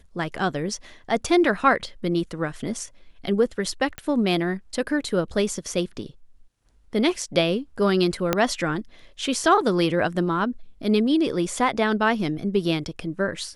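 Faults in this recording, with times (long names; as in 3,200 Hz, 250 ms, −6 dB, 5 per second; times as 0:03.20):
0:03.98: click −17 dBFS
0:08.33: click −5 dBFS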